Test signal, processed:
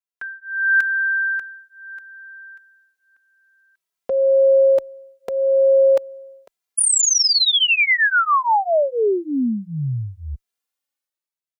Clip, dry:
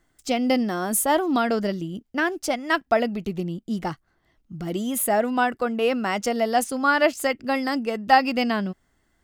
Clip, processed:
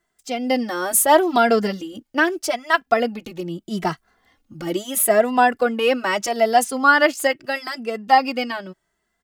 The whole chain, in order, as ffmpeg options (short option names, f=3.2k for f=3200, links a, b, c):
-filter_complex "[0:a]lowshelf=f=210:g=-11.5,dynaudnorm=f=100:g=13:m=12.5dB,asplit=2[a][b];[b]adelay=2.6,afreqshift=0.78[c];[a][c]amix=inputs=2:normalize=1"